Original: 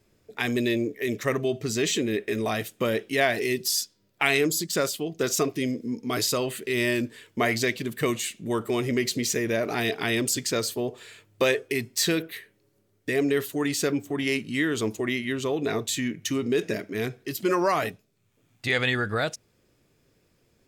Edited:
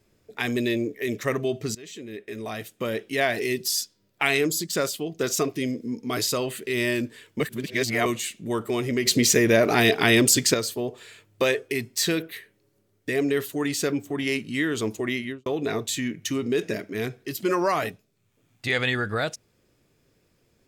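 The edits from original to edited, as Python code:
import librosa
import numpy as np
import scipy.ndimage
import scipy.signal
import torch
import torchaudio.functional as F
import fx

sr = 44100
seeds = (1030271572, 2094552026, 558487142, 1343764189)

y = fx.studio_fade_out(x, sr, start_s=15.21, length_s=0.25)
y = fx.edit(y, sr, fx.fade_in_from(start_s=1.75, length_s=1.64, floor_db=-22.0),
    fx.reverse_span(start_s=7.4, length_s=0.66),
    fx.clip_gain(start_s=9.06, length_s=1.48, db=7.5), tone=tone)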